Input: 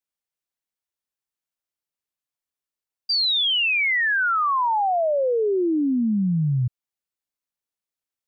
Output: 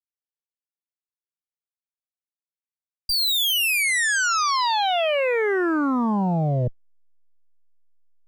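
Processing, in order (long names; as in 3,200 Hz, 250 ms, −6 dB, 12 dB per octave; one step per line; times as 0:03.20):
harmonic generator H 3 −30 dB, 4 −9 dB, 5 −10 dB, 7 −35 dB, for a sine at −17.5 dBFS
slack as between gear wheels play −48.5 dBFS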